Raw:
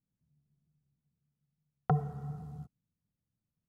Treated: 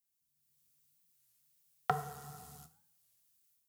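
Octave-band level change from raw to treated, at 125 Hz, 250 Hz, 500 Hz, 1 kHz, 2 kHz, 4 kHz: -13.5 dB, -13.0 dB, -2.0 dB, +1.5 dB, +7.5 dB, no reading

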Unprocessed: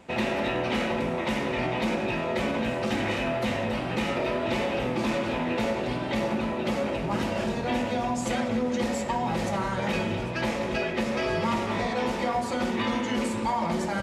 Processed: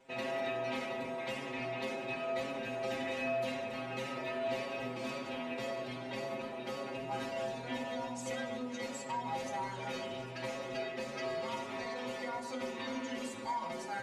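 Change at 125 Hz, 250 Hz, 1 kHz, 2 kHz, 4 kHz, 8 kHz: -16.0 dB, -14.5 dB, -10.0 dB, -10.0 dB, -10.0 dB, -9.0 dB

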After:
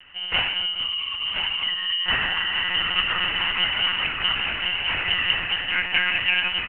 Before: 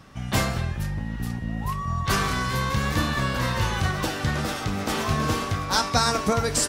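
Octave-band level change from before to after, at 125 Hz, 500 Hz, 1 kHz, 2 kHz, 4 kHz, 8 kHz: -17.5 dB, -11.5 dB, -5.5 dB, +7.5 dB, +11.0 dB, under -40 dB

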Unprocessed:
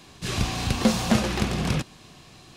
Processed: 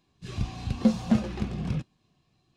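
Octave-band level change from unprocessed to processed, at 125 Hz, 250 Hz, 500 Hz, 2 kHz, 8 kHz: -4.0 dB, -1.5 dB, -7.0 dB, -13.5 dB, under -15 dB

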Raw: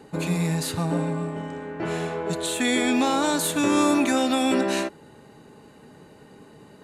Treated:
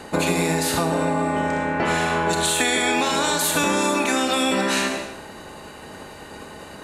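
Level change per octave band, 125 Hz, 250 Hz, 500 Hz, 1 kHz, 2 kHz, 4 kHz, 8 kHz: 0.0 dB, -1.0 dB, +3.0 dB, +5.5 dB, +7.0 dB, +6.0 dB, +6.0 dB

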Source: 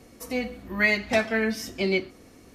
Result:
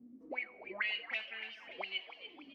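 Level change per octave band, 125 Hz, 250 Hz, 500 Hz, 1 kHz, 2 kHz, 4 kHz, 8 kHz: under -30 dB, -25.5 dB, -22.5 dB, -14.0 dB, -12.5 dB, -6.0 dB, under -35 dB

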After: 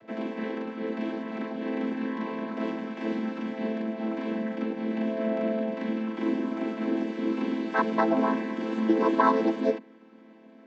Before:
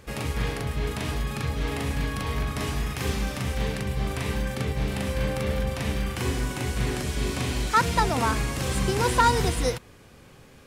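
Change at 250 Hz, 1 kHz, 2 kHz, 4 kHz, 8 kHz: +5.0 dB, -3.5 dB, -5.5 dB, -13.5 dB, under -25 dB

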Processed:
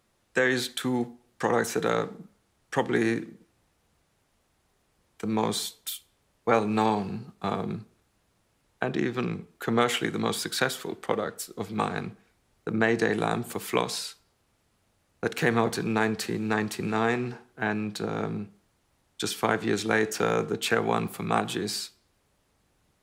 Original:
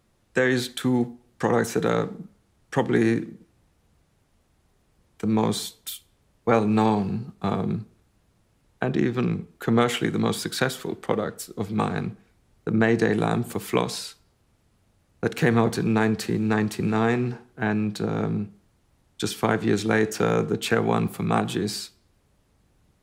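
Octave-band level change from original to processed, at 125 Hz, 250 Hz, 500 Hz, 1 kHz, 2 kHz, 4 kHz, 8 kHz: -7.5 dB, -5.5 dB, -3.0 dB, -1.0 dB, -0.5 dB, 0.0 dB, 0.0 dB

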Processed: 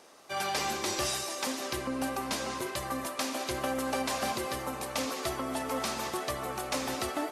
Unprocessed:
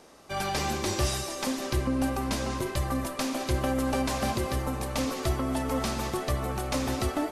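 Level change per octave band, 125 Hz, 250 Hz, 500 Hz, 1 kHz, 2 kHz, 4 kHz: -14.0 dB, -6.5 dB, -3.0 dB, -1.0 dB, -0.5 dB, 0.0 dB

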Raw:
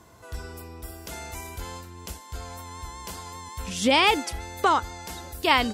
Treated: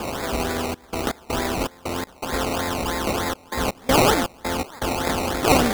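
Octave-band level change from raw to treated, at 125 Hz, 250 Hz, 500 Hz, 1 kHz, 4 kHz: +9.0 dB, +7.5 dB, +7.5 dB, +2.0 dB, +0.5 dB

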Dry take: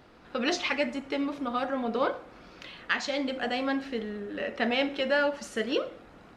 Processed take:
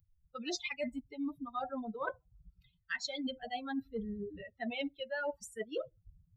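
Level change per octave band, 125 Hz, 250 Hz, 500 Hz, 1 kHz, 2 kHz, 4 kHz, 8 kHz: -5.0 dB, -8.5 dB, -11.0 dB, -9.5 dB, -11.0 dB, -9.5 dB, -4.5 dB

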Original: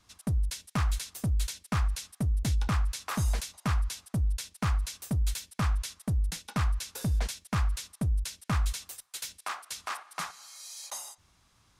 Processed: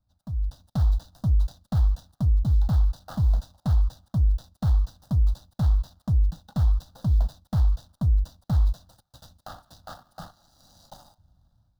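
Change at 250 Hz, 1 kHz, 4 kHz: +2.0 dB, -5.5 dB, -10.0 dB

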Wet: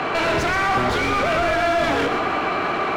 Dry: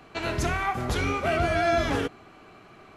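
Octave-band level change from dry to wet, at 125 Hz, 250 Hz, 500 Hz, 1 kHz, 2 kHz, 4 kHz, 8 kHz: +0.5 dB, +5.5 dB, +6.5 dB, +9.0 dB, +9.0 dB, +8.0 dB, +3.5 dB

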